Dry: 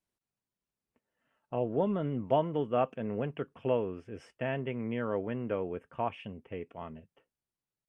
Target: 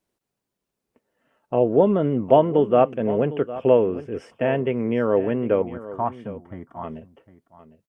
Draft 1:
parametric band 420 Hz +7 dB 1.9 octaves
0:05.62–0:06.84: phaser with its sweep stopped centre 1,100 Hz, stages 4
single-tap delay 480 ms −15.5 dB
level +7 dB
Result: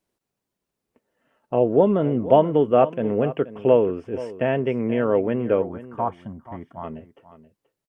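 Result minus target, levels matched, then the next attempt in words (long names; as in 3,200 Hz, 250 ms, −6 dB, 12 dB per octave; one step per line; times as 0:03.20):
echo 276 ms early
parametric band 420 Hz +7 dB 1.9 octaves
0:05.62–0:06.84: phaser with its sweep stopped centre 1,100 Hz, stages 4
single-tap delay 756 ms −15.5 dB
level +7 dB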